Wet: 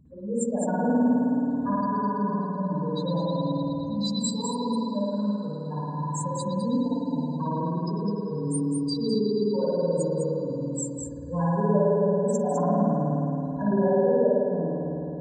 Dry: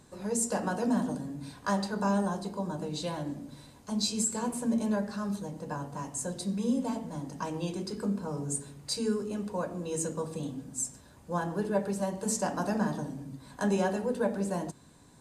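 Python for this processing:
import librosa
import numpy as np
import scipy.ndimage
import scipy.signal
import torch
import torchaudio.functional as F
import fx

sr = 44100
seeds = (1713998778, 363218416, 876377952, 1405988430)

p1 = fx.spec_expand(x, sr, power=3.2)
p2 = fx.peak_eq(p1, sr, hz=72.0, db=8.5, octaves=0.69)
p3 = p2 + fx.echo_single(p2, sr, ms=205, db=-5.5, dry=0)
p4 = fx.rev_spring(p3, sr, rt60_s=3.5, pass_ms=(53,), chirp_ms=80, drr_db=-8.5)
y = fx.end_taper(p4, sr, db_per_s=230.0)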